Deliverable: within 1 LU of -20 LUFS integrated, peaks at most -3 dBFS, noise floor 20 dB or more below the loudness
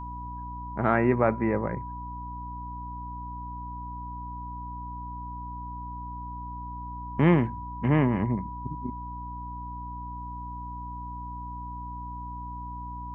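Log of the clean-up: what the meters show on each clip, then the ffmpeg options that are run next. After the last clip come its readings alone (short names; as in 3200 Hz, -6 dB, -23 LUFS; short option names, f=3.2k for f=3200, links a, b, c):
hum 60 Hz; harmonics up to 300 Hz; hum level -37 dBFS; steady tone 980 Hz; tone level -37 dBFS; loudness -31.0 LUFS; peak -8.0 dBFS; loudness target -20.0 LUFS
-> -af "bandreject=f=60:t=h:w=4,bandreject=f=120:t=h:w=4,bandreject=f=180:t=h:w=4,bandreject=f=240:t=h:w=4,bandreject=f=300:t=h:w=4"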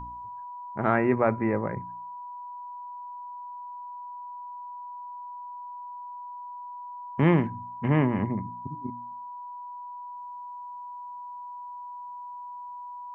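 hum none; steady tone 980 Hz; tone level -37 dBFS
-> -af "bandreject=f=980:w=30"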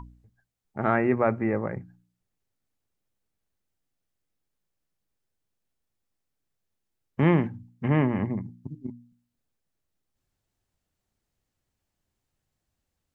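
steady tone none; loudness -26.0 LUFS; peak -8.0 dBFS; loudness target -20.0 LUFS
-> -af "volume=6dB,alimiter=limit=-3dB:level=0:latency=1"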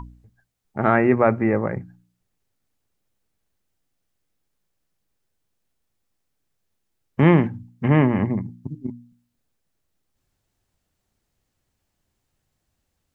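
loudness -20.0 LUFS; peak -3.0 dBFS; noise floor -77 dBFS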